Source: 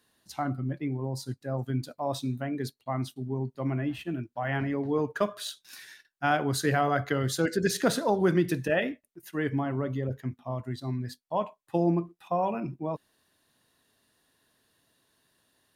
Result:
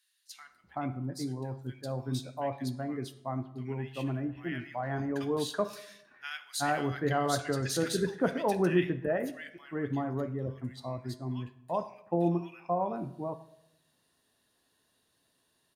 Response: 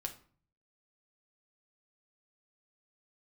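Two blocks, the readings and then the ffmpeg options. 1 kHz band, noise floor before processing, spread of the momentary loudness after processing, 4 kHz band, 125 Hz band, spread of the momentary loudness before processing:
-3.5 dB, -75 dBFS, 11 LU, -2.5 dB, -4.0 dB, 10 LU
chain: -filter_complex "[0:a]acrossover=split=1700[a][b];[a]adelay=380[c];[c][b]amix=inputs=2:normalize=0,asplit=2[d][e];[1:a]atrim=start_sample=2205,asetrate=22050,aresample=44100,lowshelf=f=260:g=-7[f];[e][f]afir=irnorm=-1:irlink=0,volume=-5.5dB[g];[d][g]amix=inputs=2:normalize=0,volume=-6.5dB"

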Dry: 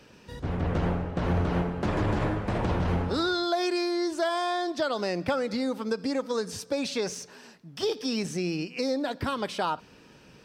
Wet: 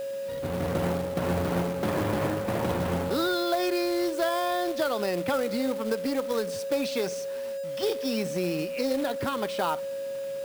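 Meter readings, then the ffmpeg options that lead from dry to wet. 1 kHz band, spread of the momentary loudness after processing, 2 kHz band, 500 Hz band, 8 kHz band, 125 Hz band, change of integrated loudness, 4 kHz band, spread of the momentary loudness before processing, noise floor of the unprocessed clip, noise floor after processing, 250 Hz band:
0.0 dB, 6 LU, +0.5 dB, +3.0 dB, +1.0 dB, -3.5 dB, +0.5 dB, -1.0 dB, 5 LU, -54 dBFS, -34 dBFS, 0.0 dB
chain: -af "highpass=120,aeval=exprs='val(0)+0.0282*sin(2*PI*550*n/s)':c=same,acrusher=bits=3:mode=log:mix=0:aa=0.000001,equalizer=f=6.2k:t=o:w=1:g=-4"

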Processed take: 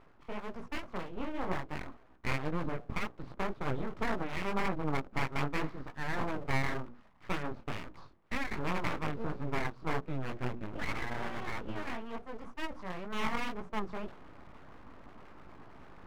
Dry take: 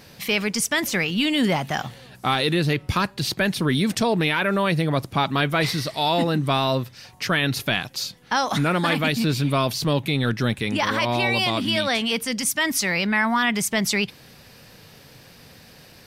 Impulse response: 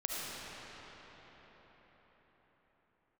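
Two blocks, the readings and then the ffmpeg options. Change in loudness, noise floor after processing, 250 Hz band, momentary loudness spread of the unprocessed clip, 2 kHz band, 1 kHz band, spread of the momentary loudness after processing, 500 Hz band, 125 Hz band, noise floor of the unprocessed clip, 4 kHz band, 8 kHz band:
-15.5 dB, -58 dBFS, -15.5 dB, 4 LU, -15.5 dB, -13.0 dB, 20 LU, -14.5 dB, -14.5 dB, -49 dBFS, -23.0 dB, -27.0 dB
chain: -af "aeval=exprs='0.398*(cos(1*acos(clip(val(0)/0.398,-1,1)))-cos(1*PI/2))+0.1*(cos(3*acos(clip(val(0)/0.398,-1,1)))-cos(3*PI/2))+0.0126*(cos(4*acos(clip(val(0)/0.398,-1,1)))-cos(4*PI/2))':c=same,flanger=delay=15.5:depth=6.9:speed=1.9,lowpass=f=1.1k:t=q:w=4.7,lowshelf=f=200:g=12,bandreject=f=60:t=h:w=6,bandreject=f=120:t=h:w=6,bandreject=f=180:t=h:w=6,bandreject=f=240:t=h:w=6,bandreject=f=300:t=h:w=6,bandreject=f=360:t=h:w=6,bandreject=f=420:t=h:w=6,bandreject=f=480:t=h:w=6,areverse,acompressor=mode=upward:threshold=-30dB:ratio=2.5,areverse,afftfilt=real='re*lt(hypot(re,im),0.708)':imag='im*lt(hypot(re,im),0.708)':win_size=1024:overlap=0.75,aeval=exprs='abs(val(0))':c=same,volume=-6dB"

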